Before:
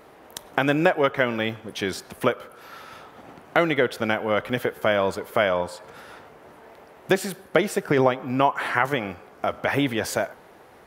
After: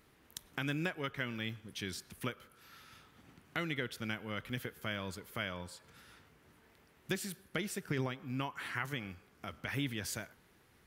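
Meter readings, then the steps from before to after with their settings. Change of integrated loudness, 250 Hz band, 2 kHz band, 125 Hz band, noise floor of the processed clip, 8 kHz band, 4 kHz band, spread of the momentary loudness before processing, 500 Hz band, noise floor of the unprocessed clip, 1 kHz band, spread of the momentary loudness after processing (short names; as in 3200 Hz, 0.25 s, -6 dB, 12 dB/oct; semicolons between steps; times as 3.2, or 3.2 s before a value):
-16.0 dB, -14.0 dB, -14.0 dB, -9.0 dB, -66 dBFS, -8.5 dB, -10.5 dB, 20 LU, -22.0 dB, -50 dBFS, -20.0 dB, 18 LU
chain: passive tone stack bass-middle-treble 6-0-2; gain +6 dB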